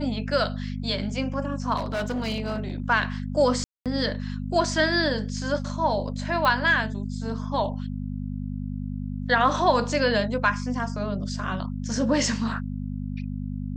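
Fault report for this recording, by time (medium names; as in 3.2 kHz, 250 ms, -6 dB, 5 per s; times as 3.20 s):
hum 50 Hz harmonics 5 -31 dBFS
1.76–2.90 s: clipped -23.5 dBFS
3.64–3.86 s: dropout 217 ms
6.45 s: pop -12 dBFS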